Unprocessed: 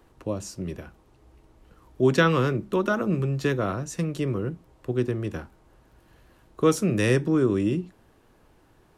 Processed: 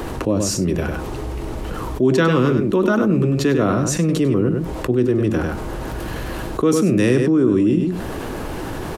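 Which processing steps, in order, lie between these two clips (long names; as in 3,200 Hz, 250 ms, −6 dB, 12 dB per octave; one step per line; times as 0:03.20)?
parametric band 360 Hz +2.5 dB 1.7 octaves
on a send: single-tap delay 99 ms −9 dB
on the sum: dynamic equaliser 260 Hz, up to +6 dB, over −35 dBFS, Q 1.7
envelope flattener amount 70%
level −2.5 dB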